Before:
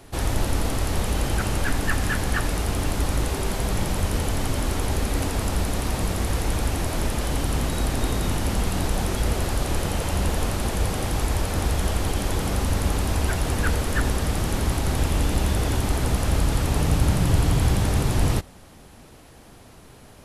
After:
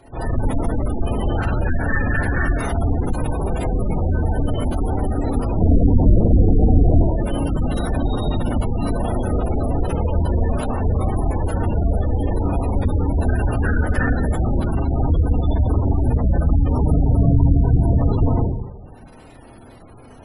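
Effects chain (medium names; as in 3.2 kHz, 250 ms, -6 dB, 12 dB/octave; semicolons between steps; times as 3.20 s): 5.57–6.97 s: tilt shelf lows +8.5 dB, about 1.2 kHz; in parallel at -7 dB: one-sided clip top -14 dBFS; on the sum: Schroeder reverb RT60 1 s, combs from 25 ms, DRR -7.5 dB; spectral gate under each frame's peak -20 dB strong; trim -5.5 dB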